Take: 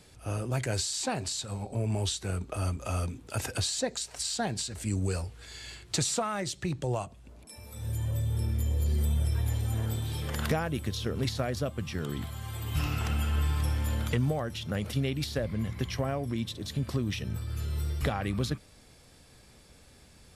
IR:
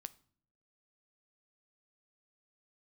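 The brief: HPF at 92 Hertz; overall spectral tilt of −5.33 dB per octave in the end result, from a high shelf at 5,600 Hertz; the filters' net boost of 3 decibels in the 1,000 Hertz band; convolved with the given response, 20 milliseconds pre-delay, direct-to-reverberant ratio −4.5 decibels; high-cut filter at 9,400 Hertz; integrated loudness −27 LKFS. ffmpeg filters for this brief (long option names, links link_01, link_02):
-filter_complex "[0:a]highpass=92,lowpass=9400,equalizer=frequency=1000:width_type=o:gain=4.5,highshelf=frequency=5600:gain=-7,asplit=2[link_01][link_02];[1:a]atrim=start_sample=2205,adelay=20[link_03];[link_02][link_03]afir=irnorm=-1:irlink=0,volume=9.5dB[link_04];[link_01][link_04]amix=inputs=2:normalize=0,volume=0.5dB"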